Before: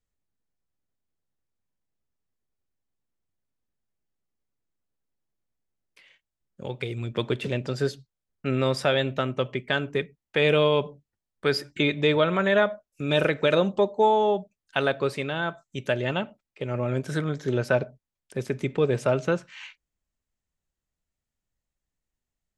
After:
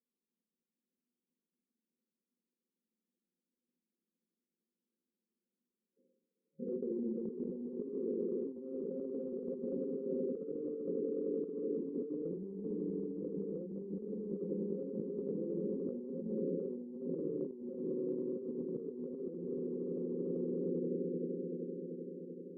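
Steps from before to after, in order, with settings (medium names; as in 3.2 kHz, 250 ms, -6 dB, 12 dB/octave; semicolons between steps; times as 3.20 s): low-pass that closes with the level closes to 340 Hz, closed at -18.5 dBFS; FFT band-pass 160–540 Hz; echo with a slow build-up 97 ms, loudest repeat 8, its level -13.5 dB; tremolo 13 Hz, depth 60%; reverberation RT60 0.50 s, pre-delay 4 ms, DRR -0.5 dB; compressor with a negative ratio -33 dBFS, ratio -1; trim -6.5 dB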